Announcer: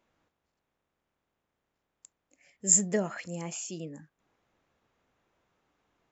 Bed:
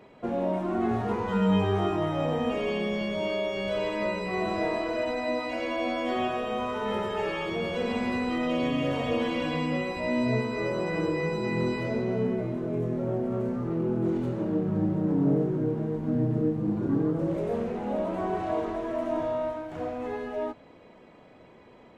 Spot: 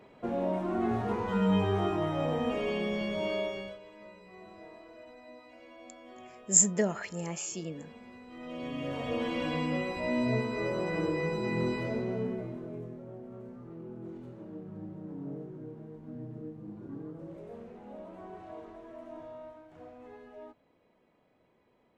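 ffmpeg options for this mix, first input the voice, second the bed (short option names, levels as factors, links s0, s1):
-filter_complex "[0:a]adelay=3850,volume=1.06[s0];[1:a]volume=6.31,afade=t=out:st=3.41:d=0.37:silence=0.112202,afade=t=in:st=8.28:d=1.2:silence=0.112202,afade=t=out:st=11.75:d=1.28:silence=0.211349[s1];[s0][s1]amix=inputs=2:normalize=0"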